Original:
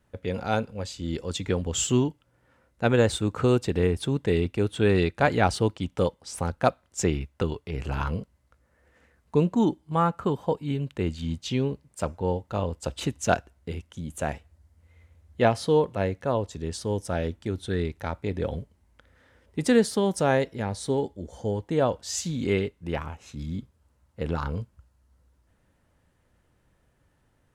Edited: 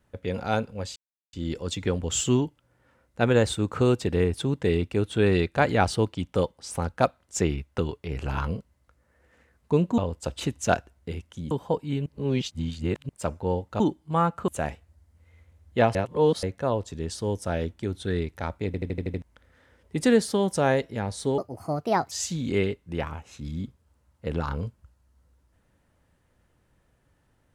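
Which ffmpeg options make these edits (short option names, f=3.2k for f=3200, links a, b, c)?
-filter_complex "[0:a]asplit=19[a][b][c][d][e][f][g][h][i][j][k][l][m][n][o][p][q][r][s];[a]atrim=end=0.96,asetpts=PTS-STARTPTS,afade=t=out:st=0.956:d=0.004:c=hsin,apad=pad_dur=0.37[t];[b]atrim=start=0.96:end=9.612,asetpts=PTS-STARTPTS,afade=t=in:d=0.004:c=hsin[u];[c]atrim=start=12.578:end=14.112[v];[d]atrim=start=10.288:end=10.842[w];[e]atrim=start=10.838:end=11.872,asetpts=PTS-STARTPTS,areverse[x];[f]atrim=start=11.868:end=12.582[y];[g]atrim=start=9.608:end=10.292[z];[h]atrim=start=14.108:end=15.582[aa];[i]atrim=start=15.578:end=16.062,asetpts=PTS-STARTPTS,areverse[ab];[j]atrim=start=16.058:end=18.372[ac];[k]atrim=start=18.288:end=18.372[ad];[l]atrim=start=18.288:end=18.372[ae];[m]atrim=start=18.288:end=18.372[af];[n]atrim=start=18.288:end=18.372[ag];[o]atrim=start=18.288:end=18.372[ah];[p]atrim=start=18.288:end=18.372[ai];[q]atrim=start=18.848:end=21.014[aj];[r]atrim=start=21.01:end=22.06,asetpts=PTS-STARTPTS,asetrate=63063,aresample=44100,atrim=end_sample=32381,asetpts=PTS-STARTPTS[ak];[s]atrim=start=22.056[al];[t][u]concat=n=2:v=0:a=1[am];[am][v]acrossfade=d=0.004:c1=hsin:c2=hsin[an];[an][w]acrossfade=d=0.004:c1=hsin:c2=hsin[ao];[ao][x]acrossfade=d=0.004:c1=hsin:c2=hsin[ap];[ap][y]acrossfade=d=0.004:c1=hsin:c2=hsin[aq];[aq][z]acrossfade=d=0.004:c1=hsin:c2=hsin[ar];[ar][aa]acrossfade=d=0.004:c1=hsin:c2=hsin[as];[as][ab]acrossfade=d=0.004:c1=hsin:c2=hsin[at];[at][ac]acrossfade=d=0.004:c1=hsin:c2=hsin[au];[au][ad]acrossfade=d=0.004:c1=hsin:c2=hsin[av];[av][ae]acrossfade=d=0.004:c1=hsin:c2=hsin[aw];[aw][af]acrossfade=d=0.004:c1=hsin:c2=hsin[ax];[ax][ag]acrossfade=d=0.004:c1=hsin:c2=hsin[ay];[ay][ah]acrossfade=d=0.004:c1=hsin:c2=hsin[az];[az][ai]acrossfade=d=0.004:c1=hsin:c2=hsin[ba];[ba][aj]acrossfade=d=0.004:c1=hsin:c2=hsin[bb];[bb][ak]acrossfade=d=0.004:c1=hsin:c2=hsin[bc];[bc][al]acrossfade=d=0.004:c1=hsin:c2=hsin"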